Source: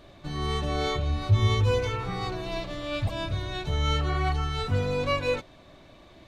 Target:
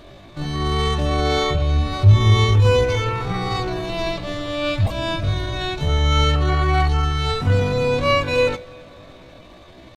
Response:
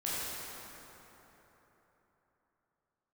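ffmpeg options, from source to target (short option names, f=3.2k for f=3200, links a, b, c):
-filter_complex "[0:a]atempo=0.63,asplit=2[a][b];[1:a]atrim=start_sample=2205[c];[b][c]afir=irnorm=-1:irlink=0,volume=-27.5dB[d];[a][d]amix=inputs=2:normalize=0,volume=8dB"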